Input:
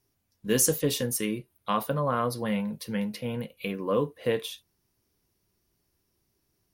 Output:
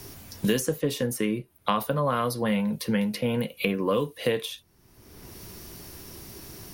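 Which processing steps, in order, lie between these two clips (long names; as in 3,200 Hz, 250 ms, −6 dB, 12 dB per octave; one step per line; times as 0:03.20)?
multiband upward and downward compressor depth 100%
level +1.5 dB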